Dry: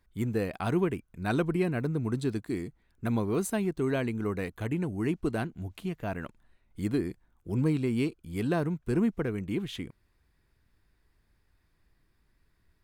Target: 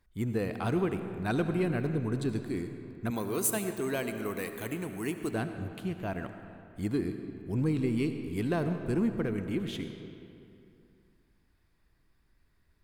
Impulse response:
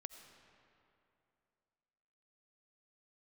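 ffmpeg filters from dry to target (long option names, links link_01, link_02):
-filter_complex "[0:a]asettb=1/sr,asplit=3[link_01][link_02][link_03];[link_01]atrim=end=3.104[link_04];[link_02]atrim=start=3.1:end=5.33,asetpts=PTS-STARTPTS,afade=type=in:duration=0.004:curve=qsin,afade=type=out:start_time=2.226:duration=0.004:curve=qsin,aemphasis=mode=production:type=bsi[link_05];[link_03]atrim=start=5.326[link_06];[link_04][link_05]acrossfade=duration=0.004:curve1=hsin:curve2=qsin[link_07];[link_07][link_06]acrossfade=duration=0.004:curve1=qsin:curve2=hsin,asoftclip=type=tanh:threshold=-17dB[link_08];[1:a]atrim=start_sample=2205[link_09];[link_08][link_09]afir=irnorm=-1:irlink=0,volume=4.5dB"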